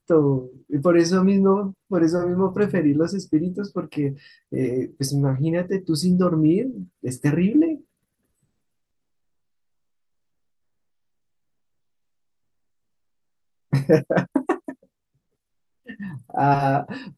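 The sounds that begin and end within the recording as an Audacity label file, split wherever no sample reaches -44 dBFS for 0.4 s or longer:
13.730000	14.830000	sound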